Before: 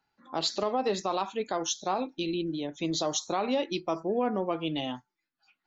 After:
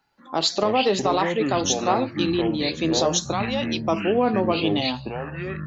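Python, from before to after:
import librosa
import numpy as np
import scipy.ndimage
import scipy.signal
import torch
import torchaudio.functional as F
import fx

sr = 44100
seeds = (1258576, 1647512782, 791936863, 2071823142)

y = fx.highpass(x, sr, hz=1100.0, slope=6, at=(3.32, 3.87))
y = fx.echo_pitch(y, sr, ms=119, semitones=-7, count=3, db_per_echo=-6.0)
y = y * librosa.db_to_amplitude(7.5)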